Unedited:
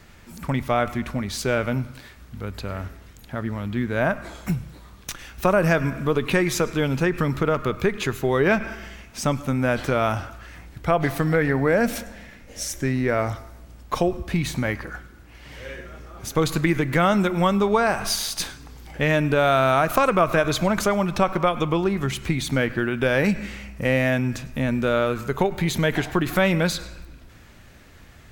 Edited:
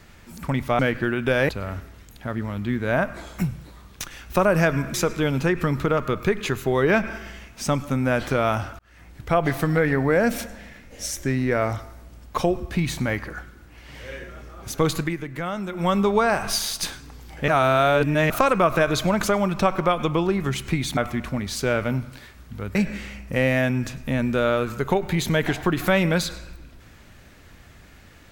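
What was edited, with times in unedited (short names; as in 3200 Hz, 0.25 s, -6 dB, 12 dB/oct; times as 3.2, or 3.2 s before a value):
0.79–2.57 swap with 22.54–23.24
6.02–6.51 cut
10.36–10.8 fade in linear
16.48–17.52 dip -10 dB, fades 0.26 s
19.05–19.87 reverse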